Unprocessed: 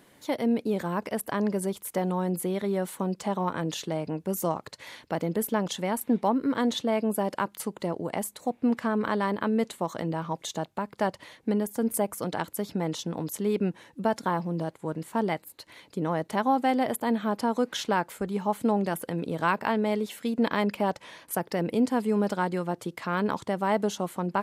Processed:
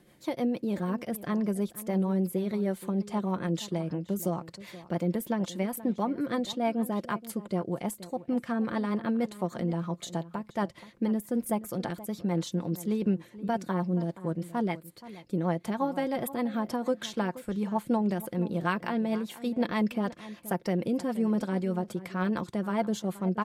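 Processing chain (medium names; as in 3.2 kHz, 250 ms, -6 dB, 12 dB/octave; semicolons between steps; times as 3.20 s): bass shelf 180 Hz +8.5 dB; comb 5.9 ms, depth 38%; rotary cabinet horn 6.3 Hz; echo from a far wall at 85 m, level -16 dB; speed mistake 24 fps film run at 25 fps; trim -3 dB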